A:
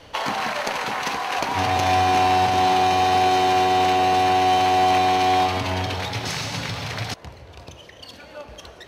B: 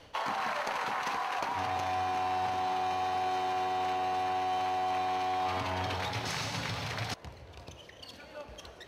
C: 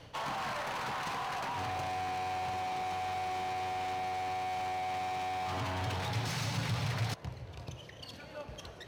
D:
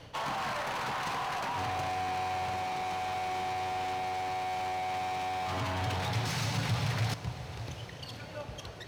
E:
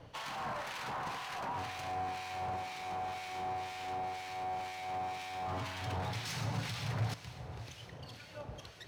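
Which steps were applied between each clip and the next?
dynamic equaliser 1,100 Hz, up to +7 dB, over −34 dBFS, Q 0.8; reversed playback; downward compressor, threshold −23 dBFS, peak gain reduction 12 dB; reversed playback; level −7 dB
gain into a clipping stage and back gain 34.5 dB; parametric band 130 Hz +10.5 dB 0.88 octaves
feedback delay with all-pass diffusion 656 ms, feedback 59%, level −14.5 dB; level +2.5 dB
two-band tremolo in antiphase 2 Hz, depth 70%, crossover 1,500 Hz; level −2.5 dB

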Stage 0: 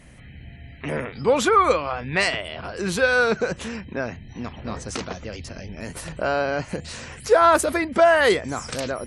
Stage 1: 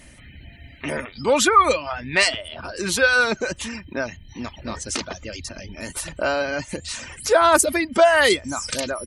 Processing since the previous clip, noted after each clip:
reverb reduction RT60 0.75 s
high-shelf EQ 2,600 Hz +8.5 dB
comb filter 3.3 ms, depth 35%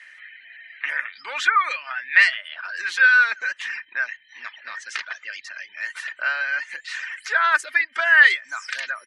in parallel at −3 dB: downward compressor, threshold −28 dBFS, peak gain reduction 17.5 dB
on the sum: four-pole ladder band-pass 1,900 Hz, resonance 65%
level +8.5 dB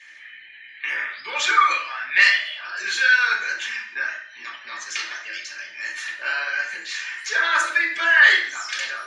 convolution reverb RT60 0.60 s, pre-delay 3 ms, DRR −4 dB
level −4.5 dB

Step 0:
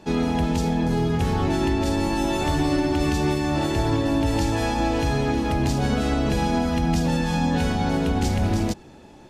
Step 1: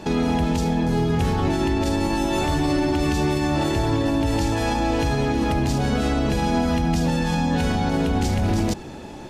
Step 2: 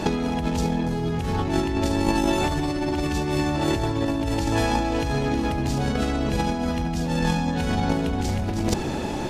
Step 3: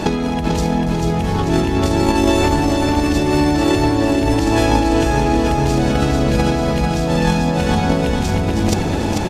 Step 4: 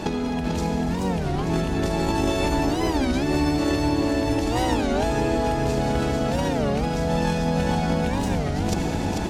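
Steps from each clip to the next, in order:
in parallel at −1 dB: compressor whose output falls as the input rises −27 dBFS, ratio −0.5; on the sum: brickwall limiter −13 dBFS, peak gain reduction 5 dB
compressor whose output falls as the input rises −25 dBFS, ratio −0.5; level +3.5 dB
repeating echo 442 ms, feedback 59%, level −4.5 dB; level +5.5 dB
on a send at −3 dB: convolution reverb RT60 3.3 s, pre-delay 68 ms; on the sum: wow of a warped record 33 1/3 rpm, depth 250 cents; level −8.5 dB

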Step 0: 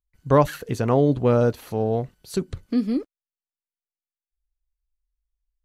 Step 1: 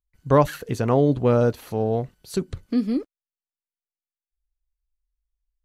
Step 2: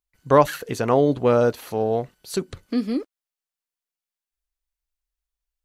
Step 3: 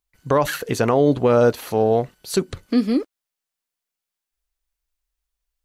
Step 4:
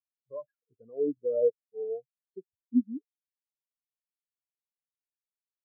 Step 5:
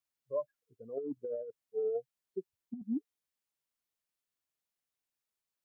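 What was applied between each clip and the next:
no processing that can be heard
low-shelf EQ 220 Hz −12 dB; level +4 dB
boost into a limiter +11.5 dB; level −6.5 dB
every bin expanded away from the loudest bin 4 to 1; level −7.5 dB
compressor whose output falls as the input rises −35 dBFS, ratio −1; level −1 dB

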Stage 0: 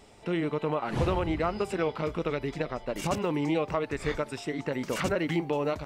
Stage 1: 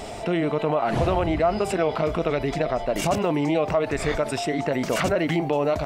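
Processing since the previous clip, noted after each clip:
parametric band 670 Hz +12.5 dB 0.24 octaves
envelope flattener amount 50%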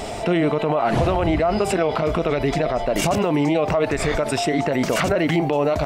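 brickwall limiter −16 dBFS, peak gain reduction 6 dB
level +5.5 dB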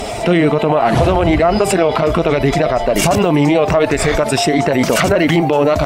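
spectral magnitudes quantised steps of 15 dB
harmonic generator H 2 −20 dB, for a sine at −9.5 dBFS
high-shelf EQ 7,500 Hz +4.5 dB
level +7 dB

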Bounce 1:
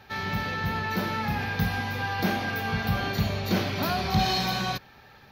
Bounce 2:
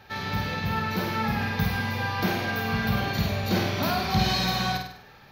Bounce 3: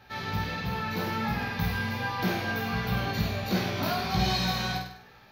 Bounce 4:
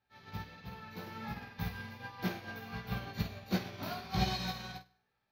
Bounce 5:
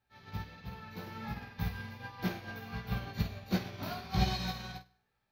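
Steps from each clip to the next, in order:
flutter between parallel walls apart 8.5 metres, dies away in 0.61 s
chorus effect 1.4 Hz, delay 16 ms, depth 2.3 ms
expander for the loud parts 2.5 to 1, over −39 dBFS; level −3.5 dB
low-shelf EQ 84 Hz +8.5 dB

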